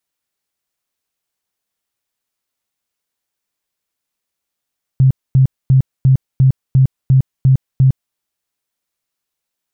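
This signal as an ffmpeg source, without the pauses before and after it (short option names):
-f lavfi -i "aevalsrc='0.501*sin(2*PI*132*mod(t,0.35))*lt(mod(t,0.35),14/132)':d=3.15:s=44100"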